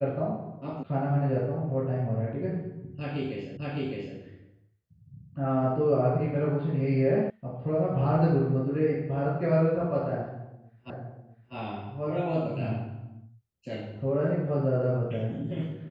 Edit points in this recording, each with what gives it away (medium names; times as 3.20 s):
0.83 s: sound stops dead
3.57 s: repeat of the last 0.61 s
7.30 s: sound stops dead
10.90 s: repeat of the last 0.65 s